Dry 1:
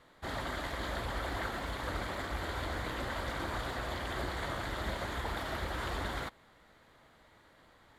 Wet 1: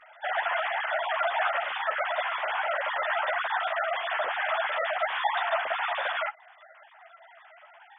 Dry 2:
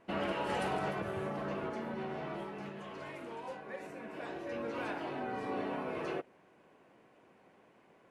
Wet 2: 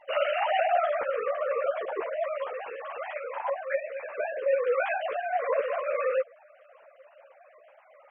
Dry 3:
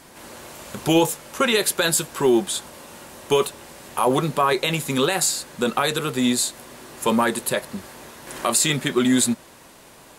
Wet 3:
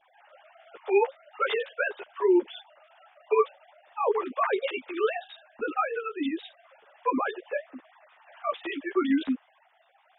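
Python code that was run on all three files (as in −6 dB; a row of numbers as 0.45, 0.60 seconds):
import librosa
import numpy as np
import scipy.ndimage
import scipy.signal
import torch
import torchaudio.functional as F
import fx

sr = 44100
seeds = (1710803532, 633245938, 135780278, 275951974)

y = fx.sine_speech(x, sr)
y = fx.ensemble(y, sr)
y = y * 10.0 ** (-30 / 20.0) / np.sqrt(np.mean(np.square(y)))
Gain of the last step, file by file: +11.5, +13.5, −3.0 decibels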